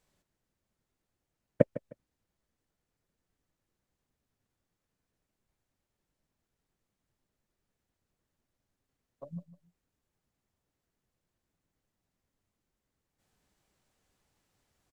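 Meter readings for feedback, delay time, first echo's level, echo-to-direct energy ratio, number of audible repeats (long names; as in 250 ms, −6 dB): 25%, 154 ms, −16.0 dB, −16.0 dB, 2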